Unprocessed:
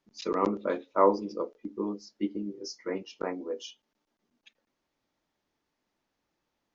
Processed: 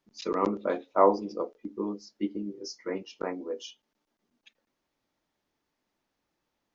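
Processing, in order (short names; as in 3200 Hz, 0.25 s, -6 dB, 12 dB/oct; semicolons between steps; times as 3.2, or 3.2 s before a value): 0.65–1.52 bell 730 Hz +9 dB 0.27 oct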